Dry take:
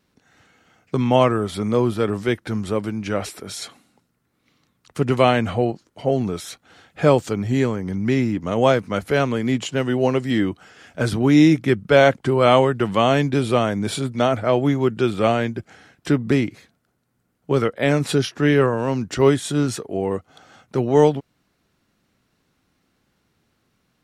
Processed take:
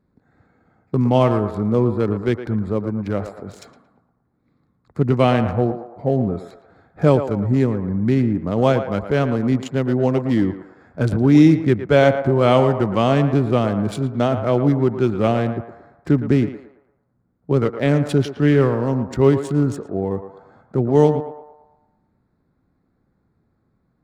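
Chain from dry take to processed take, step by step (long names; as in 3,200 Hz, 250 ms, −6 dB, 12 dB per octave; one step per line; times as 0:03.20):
adaptive Wiener filter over 15 samples
low-shelf EQ 360 Hz +8 dB
on a send: feedback echo with a band-pass in the loop 113 ms, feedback 54%, band-pass 900 Hz, level −7.5 dB
on the sum: level −3 dB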